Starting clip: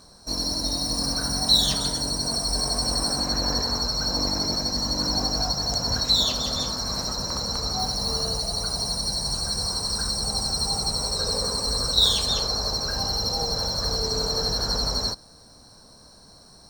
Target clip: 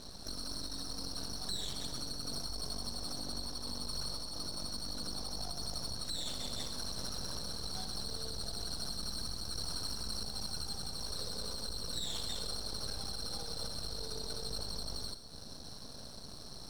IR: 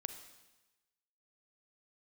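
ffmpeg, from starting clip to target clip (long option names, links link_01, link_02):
-filter_complex "[0:a]lowpass=frequency=5000:width=0.5412,lowpass=frequency=5000:width=1.3066,equalizer=frequency=2100:width=0.57:gain=-11.5,acompressor=threshold=-40dB:ratio=6,alimiter=level_in=13dB:limit=-24dB:level=0:latency=1:release=324,volume=-13dB,aexciter=amount=2:drive=6.7:freq=2800,aeval=exprs='max(val(0),0)':channel_layout=same[link_01];[1:a]atrim=start_sample=2205,atrim=end_sample=6615,asetrate=40131,aresample=44100[link_02];[link_01][link_02]afir=irnorm=-1:irlink=0,volume=9dB"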